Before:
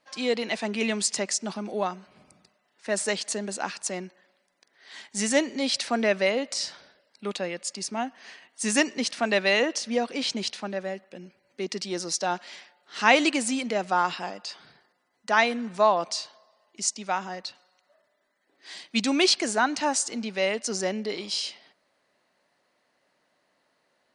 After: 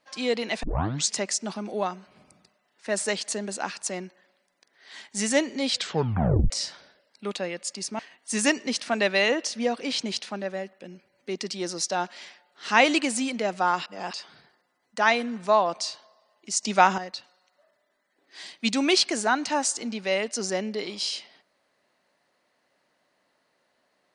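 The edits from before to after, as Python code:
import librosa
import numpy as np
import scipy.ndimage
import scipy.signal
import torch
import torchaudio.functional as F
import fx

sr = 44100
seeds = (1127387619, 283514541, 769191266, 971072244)

y = fx.edit(x, sr, fx.tape_start(start_s=0.63, length_s=0.48),
    fx.tape_stop(start_s=5.7, length_s=0.8),
    fx.cut(start_s=7.99, length_s=0.31),
    fx.reverse_span(start_s=14.17, length_s=0.27),
    fx.clip_gain(start_s=16.94, length_s=0.35, db=10.0), tone=tone)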